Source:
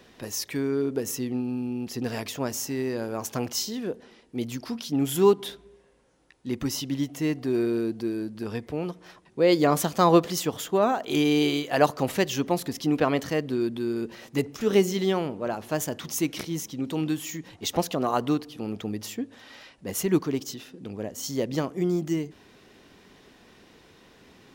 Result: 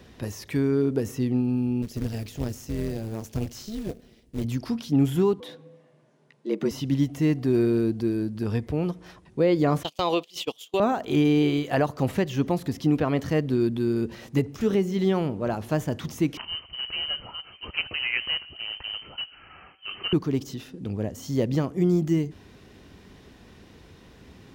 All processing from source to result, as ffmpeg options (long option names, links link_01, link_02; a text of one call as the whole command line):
ffmpeg -i in.wav -filter_complex "[0:a]asettb=1/sr,asplit=3[link_01][link_02][link_03];[link_01]atrim=end=1.824[link_04];[link_02]atrim=start=1.82:end=4.44,asetpts=PTS-STARTPTS,afade=type=in:duration=0.004:curve=qsin,afade=type=out:start_time=2.616:duration=0.004:curve=qsin,equalizer=frequency=1100:width=0.76:gain=-11.5,acrusher=bits=3:mode=log:mix=0:aa=0.000001,tremolo=f=220:d=0.75[link_05];[link_03]atrim=start=4.436[link_06];[link_04][link_05]acrossfade=duration=0.004:curve1=hsin:curve2=qsin[link_07];[link_07][link_06]acrossfade=duration=0.004:curve1=qsin:curve2=hsin,asettb=1/sr,asplit=3[link_08][link_09][link_10];[link_08]atrim=end=5.404[link_11];[link_09]atrim=start=5.4:end=6.71,asetpts=PTS-STARTPTS,afade=type=in:duration=0.004:curve=qsin,afade=type=out:start_time=1.306:duration=0.004:curve=qsin,lowpass=frequency=3600:poles=1,bandreject=frequency=1200:width=22,afreqshift=99[link_12];[link_10]atrim=start=6.706[link_13];[link_11][link_12]acrossfade=duration=0.004:curve1=hsin:curve2=qsin[link_14];[link_14][link_13]acrossfade=duration=0.004:curve1=qsin:curve2=hsin,asettb=1/sr,asplit=3[link_15][link_16][link_17];[link_15]atrim=end=9.834[link_18];[link_16]atrim=start=9.83:end=10.8,asetpts=PTS-STARTPTS,afade=type=in:duration=0.004:curve=qsin,afade=type=out:start_time=0.966:duration=0.004:curve=qsin,highpass=430,agate=range=-26dB:threshold=-32dB:ratio=16:release=100:detection=peak,highshelf=frequency=2200:width_type=q:width=3:gain=10[link_19];[link_17]atrim=start=10.796[link_20];[link_18][link_19]acrossfade=duration=0.004:curve1=hsin:curve2=qsin[link_21];[link_21][link_20]acrossfade=duration=0.004:curve1=qsin:curve2=hsin,asettb=1/sr,asplit=3[link_22][link_23][link_24];[link_22]atrim=end=16.374[link_25];[link_23]atrim=start=16.37:end=20.13,asetpts=PTS-STARTPTS,afade=type=in:duration=0.004:curve=qsin,afade=type=out:start_time=3.756:duration=0.004:curve=qsin,bandreject=frequency=187.3:width_type=h:width=4,bandreject=frequency=374.6:width_type=h:width=4,bandreject=frequency=561.9:width_type=h:width=4,bandreject=frequency=749.2:width_type=h:width=4,bandreject=frequency=936.5:width_type=h:width=4,bandreject=frequency=1123.8:width_type=h:width=4,bandreject=frequency=1311.1:width_type=h:width=4,bandreject=frequency=1498.4:width_type=h:width=4,bandreject=frequency=1685.7:width_type=h:width=4,bandreject=frequency=1873:width_type=h:width=4,bandreject=frequency=2060.3:width_type=h:width=4,bandreject=frequency=2247.6:width_type=h:width=4,bandreject=frequency=2434.9:width_type=h:width=4,bandreject=frequency=2622.2:width_type=h:width=4,acrusher=bits=3:mode=log:mix=0:aa=0.000001,lowpass=frequency=2700:width_type=q:width=0.5098,lowpass=frequency=2700:width_type=q:width=0.6013,lowpass=frequency=2700:width_type=q:width=0.9,lowpass=frequency=2700:width_type=q:width=2.563,afreqshift=-3200[link_26];[link_24]atrim=start=20.126[link_27];[link_25][link_26]acrossfade=duration=0.004:curve1=hsin:curve2=qsin[link_28];[link_28][link_27]acrossfade=duration=0.004:curve1=qsin:curve2=hsin,acrossover=split=2900[link_29][link_30];[link_30]acompressor=threshold=-40dB:ratio=4:attack=1:release=60[link_31];[link_29][link_31]amix=inputs=2:normalize=0,equalizer=frequency=65:width_type=o:width=2.9:gain=13.5,alimiter=limit=-12.5dB:level=0:latency=1:release=343" out.wav